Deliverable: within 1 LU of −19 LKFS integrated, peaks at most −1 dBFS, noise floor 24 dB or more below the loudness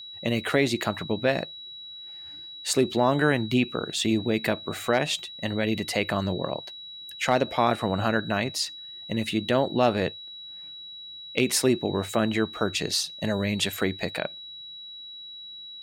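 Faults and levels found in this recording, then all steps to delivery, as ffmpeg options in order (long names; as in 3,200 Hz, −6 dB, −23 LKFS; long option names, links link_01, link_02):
interfering tone 3,900 Hz; level of the tone −39 dBFS; integrated loudness −26.0 LKFS; sample peak −8.5 dBFS; target loudness −19.0 LKFS
→ -af "bandreject=frequency=3900:width=30"
-af "volume=7dB"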